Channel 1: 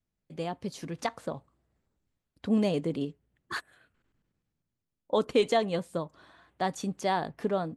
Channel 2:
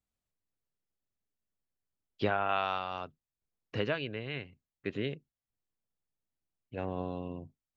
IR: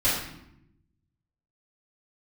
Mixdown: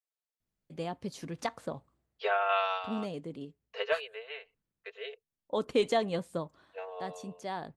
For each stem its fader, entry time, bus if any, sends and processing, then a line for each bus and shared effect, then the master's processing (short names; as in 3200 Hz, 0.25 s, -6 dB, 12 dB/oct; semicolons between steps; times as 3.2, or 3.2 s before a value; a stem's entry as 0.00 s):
-2.5 dB, 0.40 s, no send, auto duck -8 dB, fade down 0.25 s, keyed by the second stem
+1.5 dB, 0.00 s, no send, steep high-pass 430 Hz 96 dB/oct; comb 4.5 ms, depth 80%; upward expander 1.5:1, over -49 dBFS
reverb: off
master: dry